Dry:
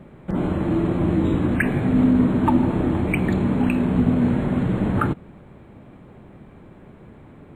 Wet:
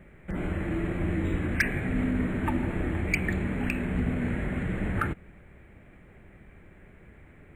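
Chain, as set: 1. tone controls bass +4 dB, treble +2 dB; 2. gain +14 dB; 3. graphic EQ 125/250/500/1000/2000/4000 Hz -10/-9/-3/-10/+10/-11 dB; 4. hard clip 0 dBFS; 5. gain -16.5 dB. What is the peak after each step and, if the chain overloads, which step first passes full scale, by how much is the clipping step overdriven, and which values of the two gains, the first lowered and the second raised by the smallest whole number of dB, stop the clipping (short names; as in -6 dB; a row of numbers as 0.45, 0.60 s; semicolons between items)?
-3.5, +10.5, +9.5, 0.0, -16.5 dBFS; step 2, 9.5 dB; step 2 +4 dB, step 5 -6.5 dB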